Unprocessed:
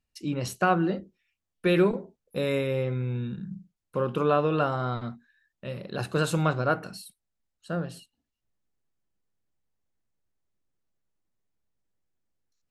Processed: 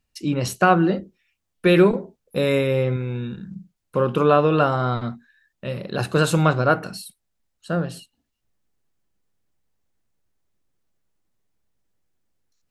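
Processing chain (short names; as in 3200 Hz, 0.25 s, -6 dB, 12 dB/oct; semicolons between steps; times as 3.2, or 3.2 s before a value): 2.96–3.56 bell 160 Hz -8 dB 0.98 oct; gain +7 dB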